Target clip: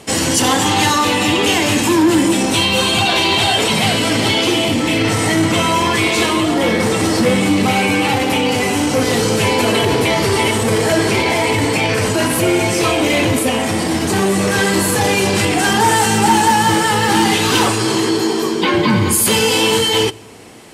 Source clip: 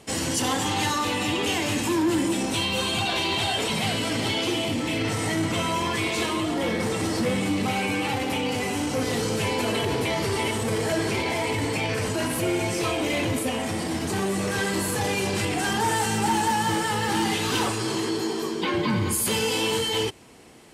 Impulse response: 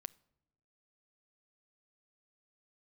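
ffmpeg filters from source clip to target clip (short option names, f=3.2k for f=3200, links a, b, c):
-filter_complex "[0:a]asplit=2[a][b];[1:a]atrim=start_sample=2205,asetrate=30870,aresample=44100,lowshelf=f=71:g=-9[c];[b][c]afir=irnorm=-1:irlink=0,volume=9.5dB[d];[a][d]amix=inputs=2:normalize=0,volume=1dB"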